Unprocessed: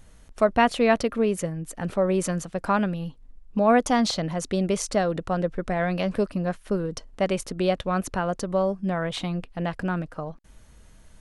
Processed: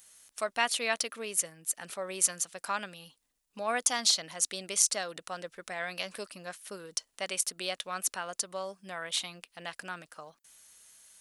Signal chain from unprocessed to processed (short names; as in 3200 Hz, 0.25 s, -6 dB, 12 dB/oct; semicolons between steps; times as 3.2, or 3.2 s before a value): differentiator; gain +7.5 dB